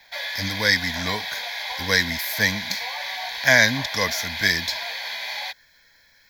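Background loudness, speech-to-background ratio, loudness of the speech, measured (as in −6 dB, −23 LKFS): −28.5 LKFS, 6.5 dB, −22.0 LKFS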